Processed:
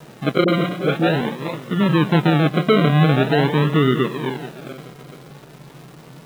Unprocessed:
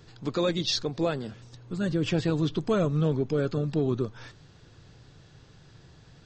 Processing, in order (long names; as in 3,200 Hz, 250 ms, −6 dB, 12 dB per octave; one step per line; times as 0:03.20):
feedback delay that plays each chunk backwards 215 ms, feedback 58%, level −12 dB
treble cut that deepens with the level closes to 450 Hz, closed at −21 dBFS
hum removal 181.6 Hz, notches 11
in parallel at −2 dB: brickwall limiter −25 dBFS, peak gain reduction 9.5 dB
on the sum: sample-and-hold swept by an LFO 39×, swing 60% 0.45 Hz
brick-wall band-pass 120–4,100 Hz
bit reduction 9 bits
0:00.44–0:01.21: all-pass dispersion highs, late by 41 ms, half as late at 470 Hz
level +8 dB